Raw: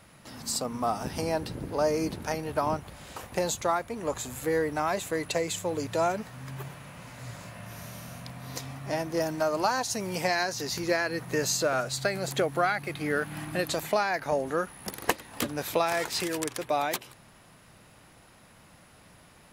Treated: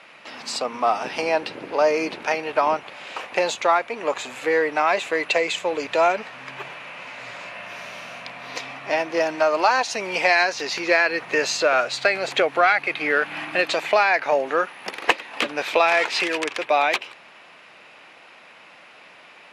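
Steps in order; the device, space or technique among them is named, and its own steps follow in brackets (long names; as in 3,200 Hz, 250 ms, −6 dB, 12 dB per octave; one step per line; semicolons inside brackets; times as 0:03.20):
intercom (band-pass filter 450–4,100 Hz; parametric band 2,500 Hz +8.5 dB 0.59 octaves; soft clipping −12 dBFS, distortion −27 dB)
level +9 dB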